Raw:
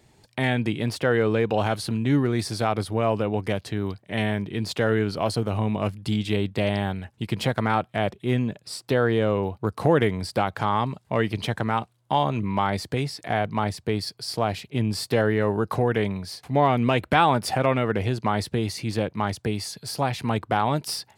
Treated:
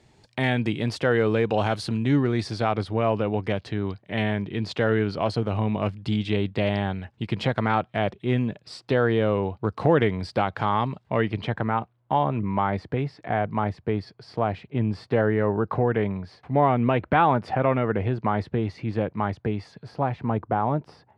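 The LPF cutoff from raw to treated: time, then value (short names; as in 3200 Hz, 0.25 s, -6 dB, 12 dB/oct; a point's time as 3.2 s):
1.94 s 6900 Hz
2.63 s 4100 Hz
10.87 s 4100 Hz
11.78 s 1900 Hz
19.6 s 1900 Hz
20.46 s 1100 Hz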